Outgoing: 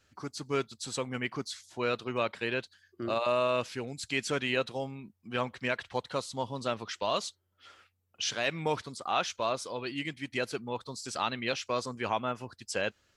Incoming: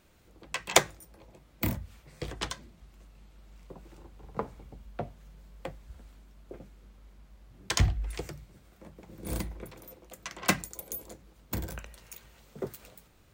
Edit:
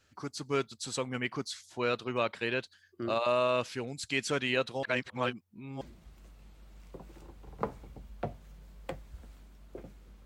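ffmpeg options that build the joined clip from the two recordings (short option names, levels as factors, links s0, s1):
-filter_complex "[0:a]apad=whole_dur=10.25,atrim=end=10.25,asplit=2[s0][s1];[s0]atrim=end=4.832[s2];[s1]atrim=start=4.828:end=5.812,asetpts=PTS-STARTPTS,areverse[s3];[1:a]atrim=start=2.568:end=7.01[s4];[s2][s3]acrossfade=d=0.004:c1=hsin:c2=hsin[s5];[s5][s4]acrossfade=d=0.004:c1=hsin:c2=hsin"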